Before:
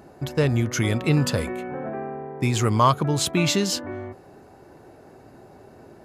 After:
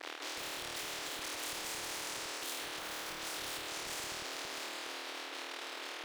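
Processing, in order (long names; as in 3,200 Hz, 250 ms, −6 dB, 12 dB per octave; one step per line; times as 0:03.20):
partials spread apart or drawn together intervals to 118%
bucket-brigade delay 216 ms, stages 2,048, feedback 65%, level −7 dB
linear-prediction vocoder at 8 kHz whisper
dead-zone distortion −47.5 dBFS
reversed playback
downward compressor 4 to 1, threshold −35 dBFS, peak gain reduction 16.5 dB
reversed playback
linear-phase brick-wall high-pass 290 Hz
reverb reduction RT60 0.93 s
flutter between parallel walls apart 4.4 metres, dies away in 0.9 s
brickwall limiter −36.5 dBFS, peak gain reduction 11.5 dB
every bin compressed towards the loudest bin 10 to 1
level +11 dB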